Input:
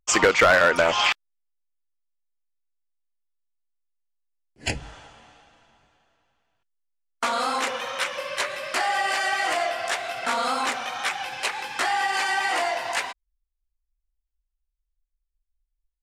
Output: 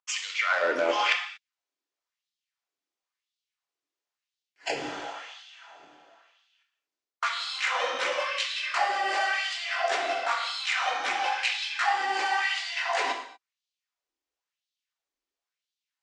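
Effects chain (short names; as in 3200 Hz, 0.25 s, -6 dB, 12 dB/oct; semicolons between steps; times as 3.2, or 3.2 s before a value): LPF 7000 Hz 24 dB/oct; reverse; compressor 6:1, threshold -35 dBFS, peak gain reduction 20 dB; reverse; LFO high-pass sine 0.97 Hz 280–3700 Hz; non-linear reverb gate 0.26 s falling, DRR 3 dB; gain +6 dB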